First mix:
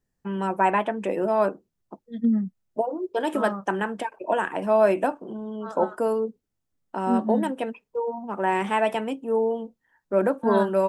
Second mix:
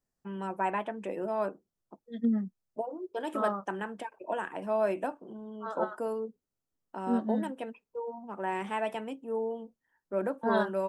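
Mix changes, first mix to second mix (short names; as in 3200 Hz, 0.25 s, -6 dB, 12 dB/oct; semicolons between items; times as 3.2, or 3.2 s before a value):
first voice -9.5 dB; second voice: add tone controls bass -10 dB, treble -2 dB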